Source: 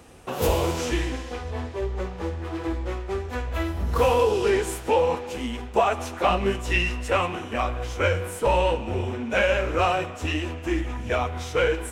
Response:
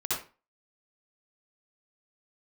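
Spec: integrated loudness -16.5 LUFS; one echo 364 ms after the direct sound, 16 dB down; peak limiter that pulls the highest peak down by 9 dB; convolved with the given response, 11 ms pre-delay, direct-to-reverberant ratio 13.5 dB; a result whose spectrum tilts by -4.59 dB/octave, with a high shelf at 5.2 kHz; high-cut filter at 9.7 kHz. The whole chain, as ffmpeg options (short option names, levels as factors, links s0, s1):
-filter_complex "[0:a]lowpass=9700,highshelf=f=5200:g=8,alimiter=limit=0.15:level=0:latency=1,aecho=1:1:364:0.158,asplit=2[s0][s1];[1:a]atrim=start_sample=2205,adelay=11[s2];[s1][s2]afir=irnorm=-1:irlink=0,volume=0.0944[s3];[s0][s3]amix=inputs=2:normalize=0,volume=3.55"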